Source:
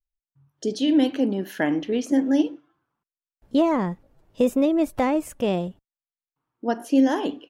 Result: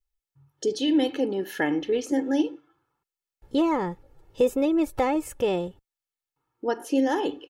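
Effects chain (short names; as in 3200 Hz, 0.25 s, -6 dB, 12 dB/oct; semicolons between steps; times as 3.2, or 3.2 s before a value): comb 2.3 ms, depth 61%; in parallel at -2 dB: compressor, threshold -34 dBFS, peak gain reduction 18.5 dB; on the sum: gain -3.5 dB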